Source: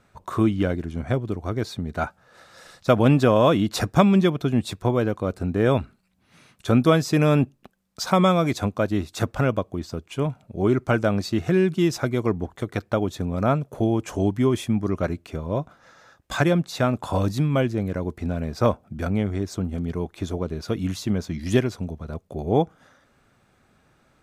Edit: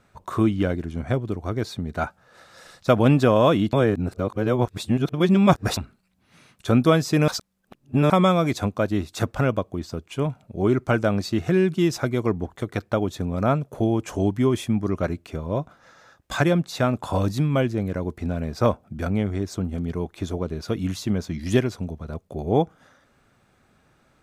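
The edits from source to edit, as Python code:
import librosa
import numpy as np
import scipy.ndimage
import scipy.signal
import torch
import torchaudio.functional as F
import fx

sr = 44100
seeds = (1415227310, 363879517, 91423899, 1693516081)

y = fx.edit(x, sr, fx.reverse_span(start_s=3.73, length_s=2.04),
    fx.reverse_span(start_s=7.28, length_s=0.82), tone=tone)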